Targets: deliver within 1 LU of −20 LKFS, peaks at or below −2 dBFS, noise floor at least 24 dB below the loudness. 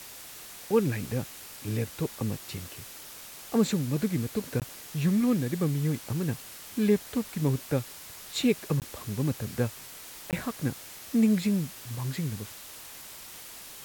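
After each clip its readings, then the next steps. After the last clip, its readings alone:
number of dropouts 3; longest dropout 18 ms; background noise floor −45 dBFS; target noise floor −54 dBFS; integrated loudness −29.5 LKFS; sample peak −12.0 dBFS; target loudness −20.0 LKFS
→ repair the gap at 0:04.60/0:08.80/0:10.31, 18 ms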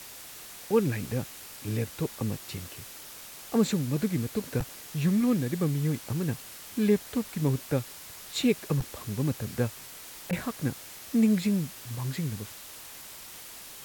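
number of dropouts 0; background noise floor −45 dBFS; target noise floor −54 dBFS
→ broadband denoise 9 dB, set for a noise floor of −45 dBFS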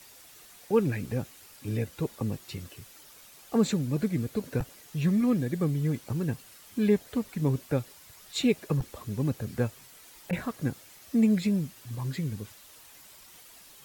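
background noise floor −53 dBFS; target noise floor −54 dBFS
→ broadband denoise 6 dB, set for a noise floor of −53 dBFS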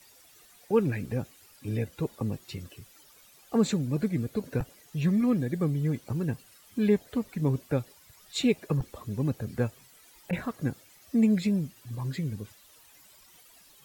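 background noise floor −57 dBFS; integrated loudness −29.5 LKFS; sample peak −12.0 dBFS; target loudness −20.0 LKFS
→ level +9.5 dB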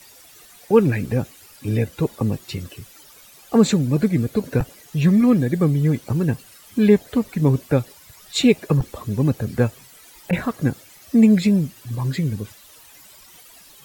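integrated loudness −20.0 LKFS; sample peak −2.5 dBFS; background noise floor −48 dBFS

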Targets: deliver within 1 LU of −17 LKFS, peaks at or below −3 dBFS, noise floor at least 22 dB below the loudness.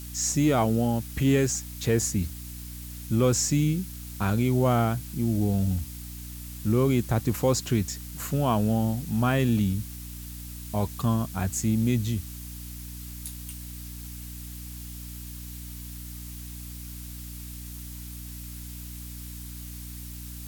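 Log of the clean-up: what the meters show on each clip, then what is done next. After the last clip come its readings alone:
mains hum 60 Hz; hum harmonics up to 300 Hz; level of the hum −39 dBFS; background noise floor −39 dBFS; target noise floor −48 dBFS; integrated loudness −26.0 LKFS; sample peak −10.5 dBFS; target loudness −17.0 LKFS
→ hum removal 60 Hz, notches 5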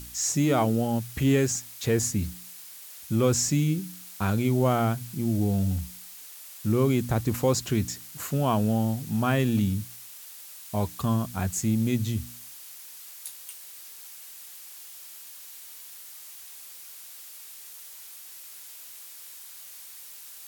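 mains hum none found; background noise floor −45 dBFS; target noise floor −49 dBFS
→ noise reduction from a noise print 6 dB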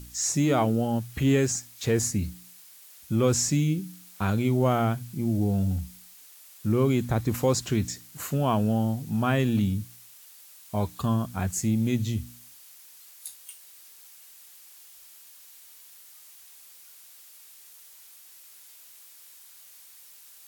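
background noise floor −51 dBFS; integrated loudness −26.5 LKFS; sample peak −10.5 dBFS; target loudness −17.0 LKFS
→ level +9.5 dB
brickwall limiter −3 dBFS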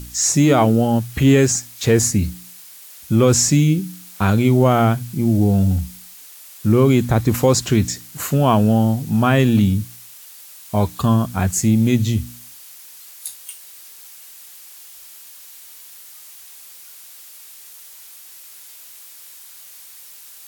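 integrated loudness −17.0 LKFS; sample peak −3.0 dBFS; background noise floor −41 dBFS

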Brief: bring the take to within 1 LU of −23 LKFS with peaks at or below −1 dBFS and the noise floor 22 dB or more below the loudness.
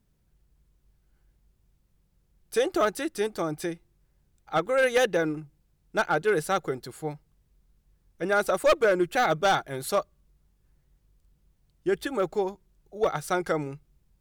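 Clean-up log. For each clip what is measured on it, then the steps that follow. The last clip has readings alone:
share of clipped samples 0.5%; peaks flattened at −16.0 dBFS; integrated loudness −27.0 LKFS; sample peak −16.0 dBFS; target loudness −23.0 LKFS
→ clipped peaks rebuilt −16 dBFS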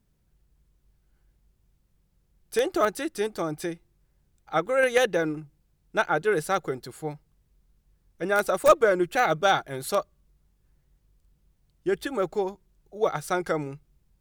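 share of clipped samples 0.0%; integrated loudness −26.0 LKFS; sample peak −7.0 dBFS; target loudness −23.0 LKFS
→ level +3 dB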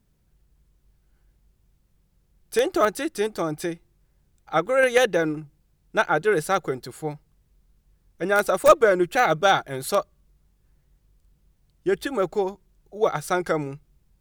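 integrated loudness −23.0 LKFS; sample peak −4.0 dBFS; background noise floor −66 dBFS

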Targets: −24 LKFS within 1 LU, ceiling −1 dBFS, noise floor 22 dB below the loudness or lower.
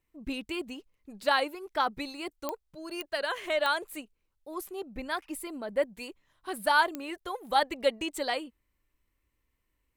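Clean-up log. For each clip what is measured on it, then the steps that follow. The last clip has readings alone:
number of clicks 4; integrated loudness −31.5 LKFS; sample peak −11.5 dBFS; target loudness −24.0 LKFS
→ click removal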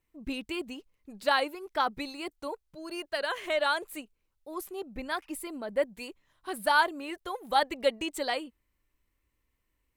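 number of clicks 0; integrated loudness −31.5 LKFS; sample peak −11.5 dBFS; target loudness −24.0 LKFS
→ level +7.5 dB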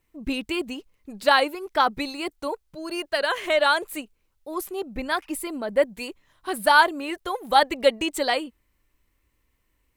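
integrated loudness −24.0 LKFS; sample peak −4.0 dBFS; background noise floor −71 dBFS

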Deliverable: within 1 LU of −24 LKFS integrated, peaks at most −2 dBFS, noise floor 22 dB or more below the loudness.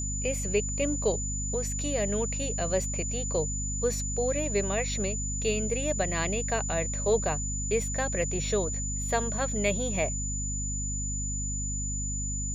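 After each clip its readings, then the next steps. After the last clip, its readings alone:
mains hum 50 Hz; hum harmonics up to 250 Hz; level of the hum −31 dBFS; interfering tone 7,000 Hz; level of the tone −33 dBFS; integrated loudness −29.0 LKFS; sample peak −13.5 dBFS; target loudness −24.0 LKFS
→ hum removal 50 Hz, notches 5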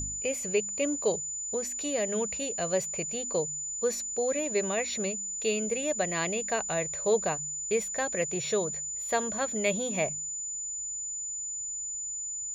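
mains hum none found; interfering tone 7,000 Hz; level of the tone −33 dBFS
→ notch filter 7,000 Hz, Q 30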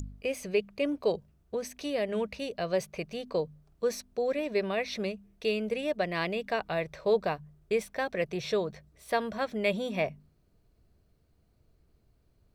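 interfering tone none found; integrated loudness −32.0 LKFS; sample peak −15.5 dBFS; target loudness −24.0 LKFS
→ level +8 dB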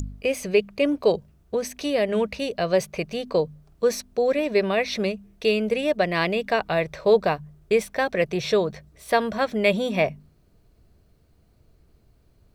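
integrated loudness −24.0 LKFS; sample peak −7.5 dBFS; background noise floor −60 dBFS

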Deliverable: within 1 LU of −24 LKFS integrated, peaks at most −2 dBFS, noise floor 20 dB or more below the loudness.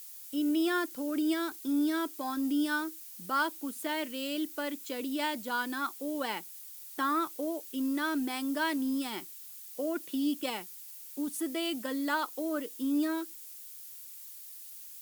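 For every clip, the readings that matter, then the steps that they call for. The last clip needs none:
background noise floor −47 dBFS; target noise floor −53 dBFS; integrated loudness −33.0 LKFS; sample peak −18.0 dBFS; target loudness −24.0 LKFS
→ noise reduction from a noise print 6 dB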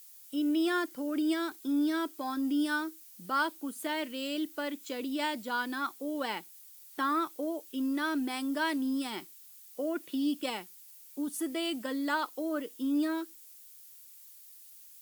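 background noise floor −53 dBFS; integrated loudness −33.0 LKFS; sample peak −18.5 dBFS; target loudness −24.0 LKFS
→ level +9 dB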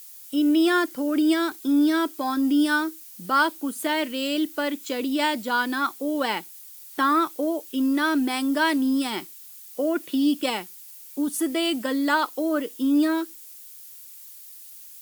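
integrated loudness −24.0 LKFS; sample peak −9.5 dBFS; background noise floor −44 dBFS

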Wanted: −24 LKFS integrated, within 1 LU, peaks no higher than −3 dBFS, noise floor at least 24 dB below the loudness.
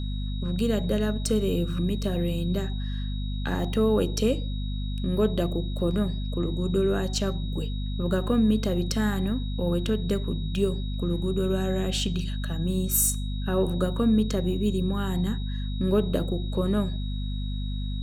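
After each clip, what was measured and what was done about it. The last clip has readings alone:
mains hum 50 Hz; hum harmonics up to 250 Hz; level of the hum −27 dBFS; interfering tone 3,800 Hz; level of the tone −43 dBFS; integrated loudness −27.0 LKFS; sample peak −9.0 dBFS; target loudness −24.0 LKFS
→ mains-hum notches 50/100/150/200/250 Hz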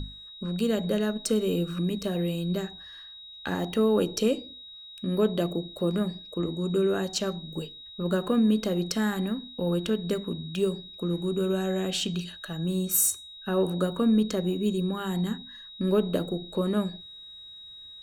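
mains hum none found; interfering tone 3,800 Hz; level of the tone −43 dBFS
→ notch filter 3,800 Hz, Q 30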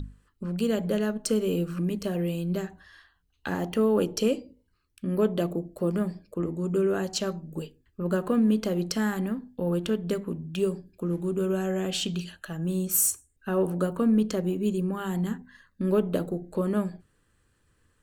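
interfering tone none found; integrated loudness −28.0 LKFS; sample peak −10.5 dBFS; target loudness −24.0 LKFS
→ level +4 dB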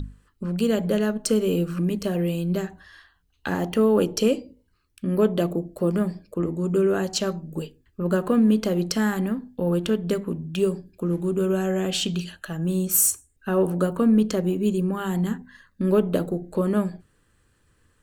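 integrated loudness −24.0 LKFS; sample peak −6.5 dBFS; background noise floor −66 dBFS

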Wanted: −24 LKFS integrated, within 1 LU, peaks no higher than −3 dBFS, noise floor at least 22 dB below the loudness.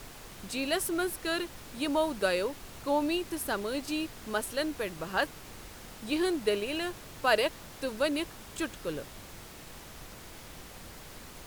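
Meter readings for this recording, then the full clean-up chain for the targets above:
background noise floor −48 dBFS; target noise floor −54 dBFS; integrated loudness −32.0 LKFS; sample peak −13.5 dBFS; target loudness −24.0 LKFS
→ noise reduction from a noise print 6 dB
level +8 dB

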